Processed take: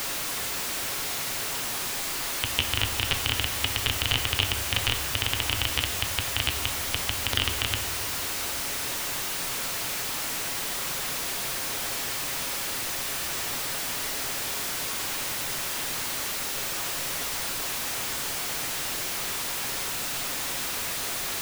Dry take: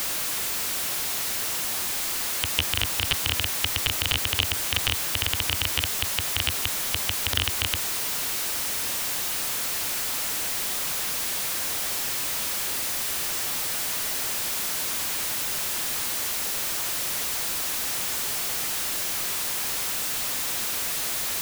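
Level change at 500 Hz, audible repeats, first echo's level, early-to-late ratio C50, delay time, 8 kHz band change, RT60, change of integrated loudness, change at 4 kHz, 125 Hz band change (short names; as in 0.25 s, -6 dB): +1.5 dB, none, none, 9.5 dB, none, -3.0 dB, 2.0 s, -2.5 dB, -1.0 dB, +1.0 dB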